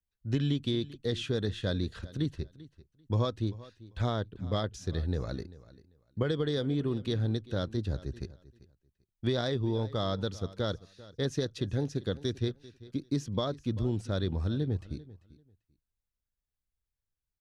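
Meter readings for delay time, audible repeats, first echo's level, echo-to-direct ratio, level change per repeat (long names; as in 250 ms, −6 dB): 392 ms, 2, −19.0 dB, −19.0 dB, −14.5 dB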